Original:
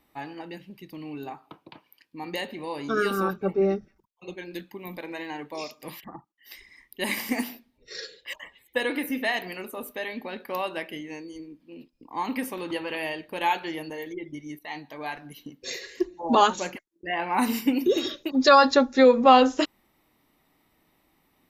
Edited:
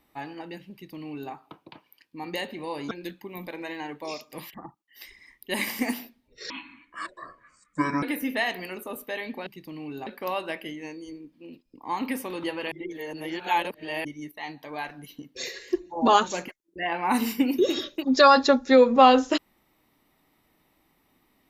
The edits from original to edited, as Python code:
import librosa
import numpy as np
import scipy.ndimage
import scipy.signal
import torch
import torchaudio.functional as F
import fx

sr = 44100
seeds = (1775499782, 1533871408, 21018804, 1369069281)

y = fx.edit(x, sr, fx.duplicate(start_s=0.72, length_s=0.6, to_s=10.34),
    fx.cut(start_s=2.91, length_s=1.5),
    fx.speed_span(start_s=8.0, length_s=0.9, speed=0.59),
    fx.reverse_span(start_s=12.99, length_s=1.33), tone=tone)